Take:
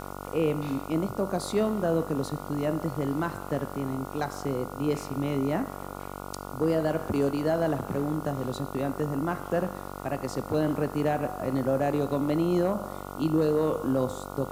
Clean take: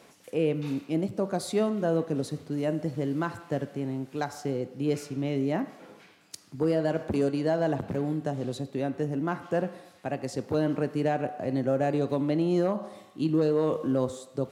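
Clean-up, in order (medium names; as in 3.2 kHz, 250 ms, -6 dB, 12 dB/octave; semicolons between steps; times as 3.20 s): de-hum 47.9 Hz, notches 30; noise print and reduce 12 dB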